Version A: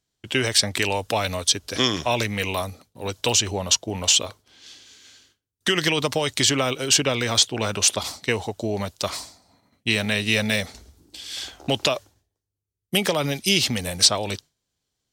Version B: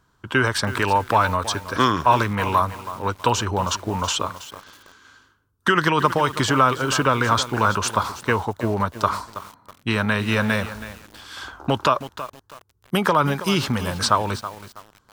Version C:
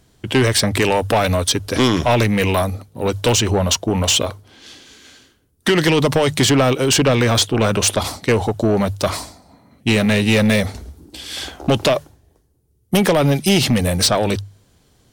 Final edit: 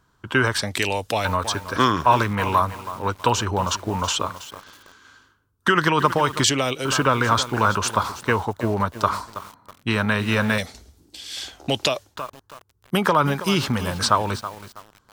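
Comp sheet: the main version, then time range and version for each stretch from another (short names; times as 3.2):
B
0.62–1.25 from A
6.44–6.85 from A
10.58–12.16 from A
not used: C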